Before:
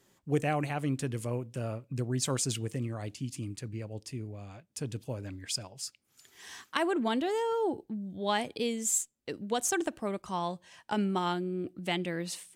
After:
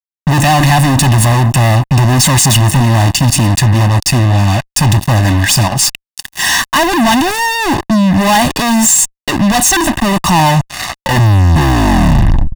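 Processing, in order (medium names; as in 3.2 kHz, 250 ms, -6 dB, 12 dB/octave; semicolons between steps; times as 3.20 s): tape stop on the ending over 2.38 s; fuzz box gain 53 dB, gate -53 dBFS; comb 1.1 ms, depth 88%; trim +2.5 dB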